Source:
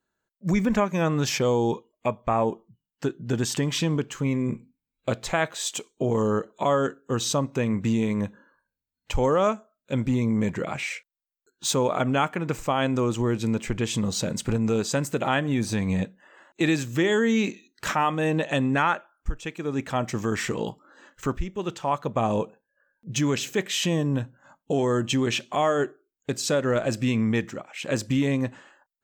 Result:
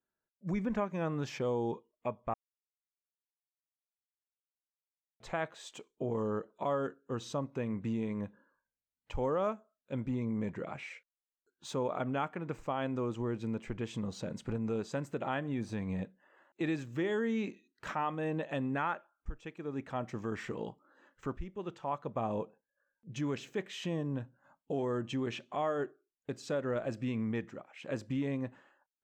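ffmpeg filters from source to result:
ffmpeg -i in.wav -filter_complex "[0:a]asplit=3[link_01][link_02][link_03];[link_01]atrim=end=2.34,asetpts=PTS-STARTPTS,afade=type=out:start_time=2.336:duration=0.004:curve=hsin[link_04];[link_02]atrim=start=2.34:end=5.2,asetpts=PTS-STARTPTS,volume=0[link_05];[link_03]atrim=start=5.2,asetpts=PTS-STARTPTS,afade=type=in:duration=0.004:curve=hsin[link_06];[link_04][link_05][link_06]concat=n=3:v=0:a=1,lowpass=frequency=1500:poles=1,lowshelf=frequency=230:gain=-3.5,volume=-9dB" out.wav

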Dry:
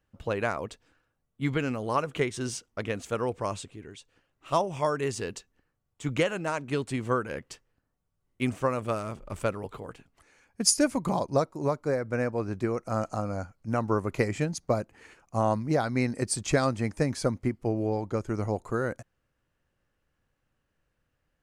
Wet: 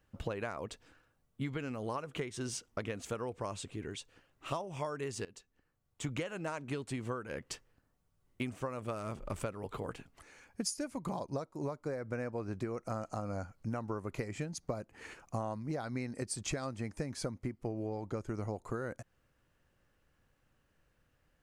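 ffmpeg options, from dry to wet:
ffmpeg -i in.wav -filter_complex "[0:a]asplit=2[link_01][link_02];[link_01]atrim=end=5.25,asetpts=PTS-STARTPTS,afade=type=out:start_time=5.246:duration=0.004:curve=hsin:silence=0.105925[link_03];[link_02]atrim=start=5.25,asetpts=PTS-STARTPTS,afade=type=in:duration=1:silence=0.105925[link_04];[link_03][link_04]concat=n=2:v=0:a=1,acompressor=threshold=-38dB:ratio=10,volume=3.5dB" out.wav

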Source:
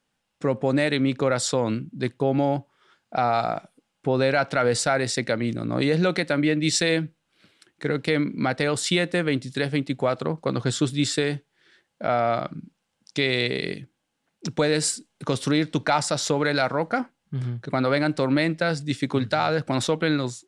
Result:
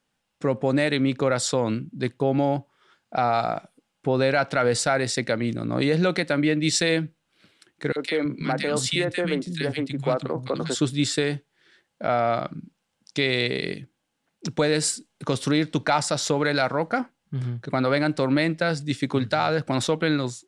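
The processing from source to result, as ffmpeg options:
ffmpeg -i in.wav -filter_complex "[0:a]asettb=1/sr,asplit=3[link_01][link_02][link_03];[link_01]atrim=end=7.924[link_04];[link_02]atrim=start=7.92:end=10.75,asetpts=PTS-STARTPTS,afade=type=in:duration=0.004:curve=qsin,afade=type=out:start_time=2.826:duration=0.004:curve=qsin,acrossover=split=220|1600[link_05][link_06][link_07];[link_06]adelay=40[link_08];[link_05]adelay=330[link_09];[link_09][link_08][link_07]amix=inputs=3:normalize=0,atrim=end_sample=124803[link_10];[link_03]atrim=start=10.746[link_11];[link_04][link_10]acrossfade=duration=0.004:curve1=hsin:curve2=qsin[link_12];[link_12][link_11]acrossfade=duration=0.004:curve1=qsin:curve2=hsin" out.wav

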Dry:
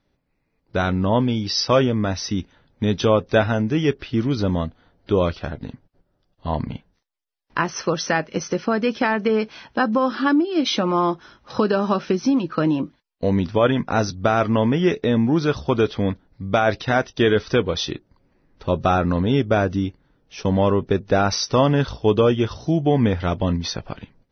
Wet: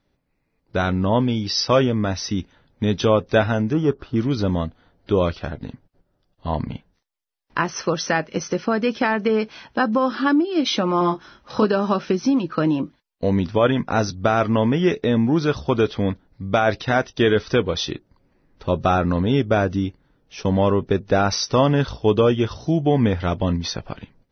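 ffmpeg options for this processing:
ffmpeg -i in.wav -filter_complex "[0:a]asettb=1/sr,asplit=3[link_01][link_02][link_03];[link_01]atrim=end=3.734[link_04];[link_02]atrim=start=3.73:end=4.16,asetpts=PTS-STARTPTS,afade=type=in:duration=0.004:curve=qsin,afade=type=out:start_time=0.426:duration=0.004:curve=qsin,highshelf=frequency=1600:width_type=q:width=3:gain=-8.5[link_05];[link_03]atrim=start=4.156[link_06];[link_04][link_05]acrossfade=duration=0.004:curve1=hsin:curve2=qsin[link_07];[link_07][link_06]acrossfade=duration=0.004:curve1=qsin:curve2=hsin,asettb=1/sr,asplit=3[link_08][link_09][link_10];[link_08]atrim=end=10.984[link_11];[link_09]atrim=start=10.98:end=11.65,asetpts=PTS-STARTPTS,afade=type=in:duration=0.004:curve=qsin,afade=type=out:start_time=0.666:duration=0.004:curve=qsin,asplit=2[link_12][link_13];[link_13]adelay=28,volume=-5dB[link_14];[link_12][link_14]amix=inputs=2:normalize=0,atrim=end_sample=29547[link_15];[link_10]atrim=start=11.646[link_16];[link_11][link_15]acrossfade=duration=0.004:curve1=hsin:curve2=qsin[link_17];[link_17][link_16]acrossfade=duration=0.004:curve1=qsin:curve2=hsin" out.wav

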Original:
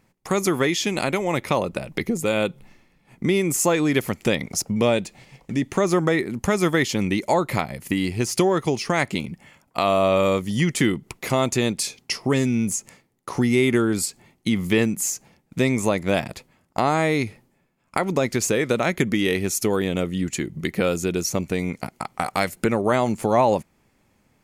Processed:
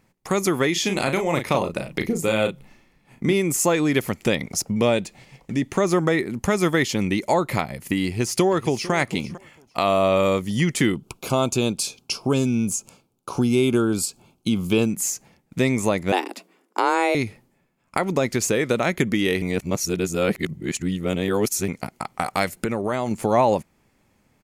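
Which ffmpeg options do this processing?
ffmpeg -i in.wav -filter_complex "[0:a]asplit=3[link_01][link_02][link_03];[link_01]afade=type=out:start_time=0.75:duration=0.02[link_04];[link_02]asplit=2[link_05][link_06];[link_06]adelay=36,volume=-6.5dB[link_07];[link_05][link_07]amix=inputs=2:normalize=0,afade=type=in:start_time=0.75:duration=0.02,afade=type=out:start_time=3.32:duration=0.02[link_08];[link_03]afade=type=in:start_time=3.32:duration=0.02[link_09];[link_04][link_08][link_09]amix=inputs=3:normalize=0,asplit=2[link_10][link_11];[link_11]afade=type=in:start_time=8.06:duration=0.01,afade=type=out:start_time=8.92:duration=0.01,aecho=0:1:450|900:0.158489|0.0237734[link_12];[link_10][link_12]amix=inputs=2:normalize=0,asettb=1/sr,asplit=3[link_13][link_14][link_15];[link_13]atrim=end=10.954[link_16];[link_14]atrim=start=10.95:end=14.9,asetpts=PTS-STARTPTS,afade=type=in:duration=0.004:curve=qsin,afade=type=out:start_time=3.946:duration=0.004:curve=qsin,asuperstop=centerf=1900:order=4:qfactor=2.4[link_17];[link_15]atrim=start=14.896[link_18];[link_16][link_17]acrossfade=duration=0.004:curve1=hsin:curve2=qsin[link_19];[link_19][link_18]acrossfade=duration=0.004:curve1=qsin:curve2=hsin,asettb=1/sr,asplit=3[link_20][link_21][link_22];[link_20]atrim=end=16.124[link_23];[link_21]atrim=start=16.12:end=17.15,asetpts=PTS-STARTPTS,afade=type=in:duration=0.004:curve=qsin,afade=type=out:start_time=1.026:duration=0.004:curve=qsin,afreqshift=170[link_24];[link_22]atrim=start=17.146[link_25];[link_23][link_24]acrossfade=duration=0.004:curve1=hsin:curve2=qsin[link_26];[link_26][link_25]acrossfade=duration=0.004:curve1=qsin:curve2=hsin,asettb=1/sr,asplit=3[link_27][link_28][link_29];[link_27]atrim=end=22.464[link_30];[link_28]atrim=start=22.46:end=23.11,asetpts=PTS-STARTPTS,afade=type=in:duration=0.004:curve=qsin,afade=type=out:start_time=0.646:duration=0.004:curve=qsin,acompressor=threshold=-21dB:ratio=2.5:attack=3.2:release=140:knee=1:detection=peak[link_31];[link_29]atrim=start=23.106[link_32];[link_30][link_31]acrossfade=duration=0.004:curve1=hsin:curve2=qsin[link_33];[link_33][link_32]acrossfade=duration=0.004:curve1=qsin:curve2=hsin,asplit=3[link_34][link_35][link_36];[link_34]atrim=end=19.422[link_37];[link_35]atrim=start=19.418:end=21.682,asetpts=PTS-STARTPTS,areverse[link_38];[link_36]atrim=start=21.678[link_39];[link_37][link_38]acrossfade=duration=0.004:curve1=hsin:curve2=hsin[link_40];[link_40][link_39]acrossfade=duration=0.004:curve1=hsin:curve2=hsin" out.wav

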